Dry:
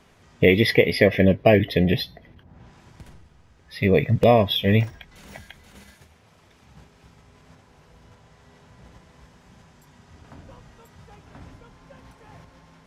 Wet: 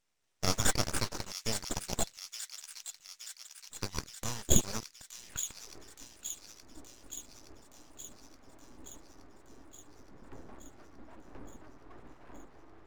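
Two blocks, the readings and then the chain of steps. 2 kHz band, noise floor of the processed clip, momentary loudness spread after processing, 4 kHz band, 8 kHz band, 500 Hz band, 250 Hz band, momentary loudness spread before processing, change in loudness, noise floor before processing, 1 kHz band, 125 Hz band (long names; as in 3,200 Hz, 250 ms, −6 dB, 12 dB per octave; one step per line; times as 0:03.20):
−17.5 dB, −63 dBFS, 25 LU, −9.5 dB, can't be measured, −23.0 dB, −18.5 dB, 8 LU, −16.5 dB, −56 dBFS, −13.5 dB, −17.0 dB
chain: adaptive Wiener filter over 15 samples
high-pass filter sweep 3,400 Hz → 130 Hz, 0:05.03–0:05.76
harmonic generator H 8 −26 dB, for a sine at −3.5 dBFS
full-wave rectification
on a send: delay with a high-pass on its return 871 ms, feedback 65%, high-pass 2,400 Hz, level −8 dB
on the sum: level −3.5 dB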